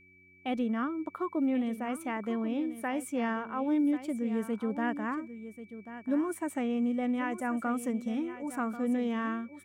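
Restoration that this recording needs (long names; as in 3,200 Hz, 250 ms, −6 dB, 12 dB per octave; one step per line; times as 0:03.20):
hum removal 92.1 Hz, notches 4
notch filter 2,300 Hz, Q 30
echo removal 1,088 ms −12.5 dB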